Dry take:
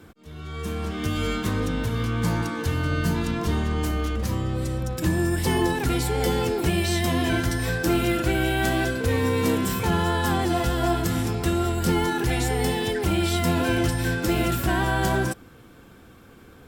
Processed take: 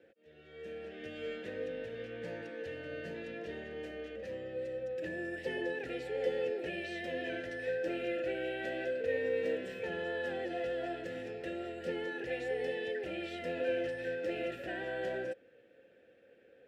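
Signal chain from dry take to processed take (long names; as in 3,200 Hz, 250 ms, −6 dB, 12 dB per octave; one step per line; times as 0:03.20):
formant filter e
high-shelf EQ 7,000 Hz −5 dB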